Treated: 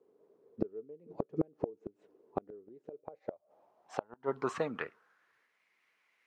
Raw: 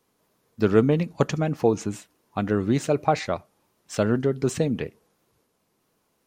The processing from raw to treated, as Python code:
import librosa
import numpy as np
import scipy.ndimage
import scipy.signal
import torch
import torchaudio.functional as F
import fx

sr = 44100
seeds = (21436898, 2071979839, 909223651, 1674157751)

y = fx.filter_sweep_bandpass(x, sr, from_hz=420.0, to_hz=2100.0, start_s=2.83, end_s=5.64, q=5.2)
y = fx.gate_flip(y, sr, shuts_db=-29.0, range_db=-35)
y = F.gain(torch.from_numpy(y), 12.0).numpy()